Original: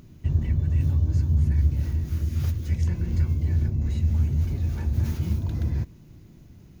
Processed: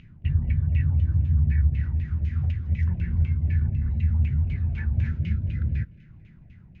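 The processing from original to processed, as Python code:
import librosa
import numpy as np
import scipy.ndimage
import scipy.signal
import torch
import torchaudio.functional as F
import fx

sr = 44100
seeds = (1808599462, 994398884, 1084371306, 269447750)

y = fx.band_shelf(x, sr, hz=580.0, db=-12.0, octaves=2.5)
y = fx.spec_box(y, sr, start_s=5.08, length_s=0.98, low_hz=650.0, high_hz=1300.0, gain_db=-13)
y = fx.filter_lfo_lowpass(y, sr, shape='saw_down', hz=4.0, low_hz=560.0, high_hz=2800.0, q=4.4)
y = fx.echo_thinned(y, sr, ms=221, feedback_pct=55, hz=420.0, wet_db=-23.0)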